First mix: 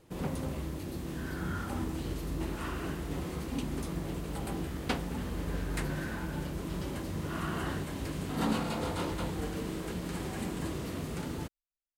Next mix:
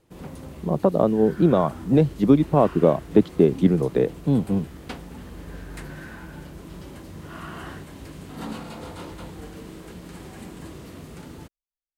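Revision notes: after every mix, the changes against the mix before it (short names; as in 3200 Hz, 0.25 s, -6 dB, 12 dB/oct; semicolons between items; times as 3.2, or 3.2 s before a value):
speech: unmuted; first sound -3.5 dB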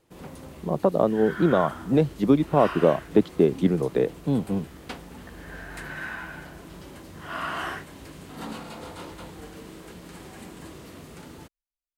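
second sound +9.5 dB; master: add low shelf 290 Hz -6 dB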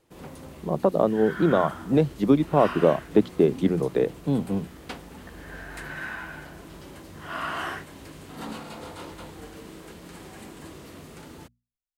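master: add notches 60/120/180/240 Hz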